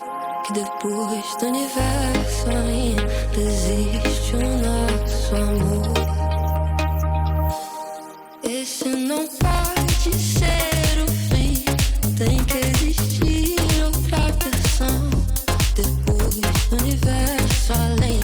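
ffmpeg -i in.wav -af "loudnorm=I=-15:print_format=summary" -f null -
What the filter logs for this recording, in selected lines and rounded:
Input Integrated:    -20.8 LUFS
Input True Peak:      -6.5 dBTP
Input LRA:             3.1 LU
Input Threshold:     -30.9 LUFS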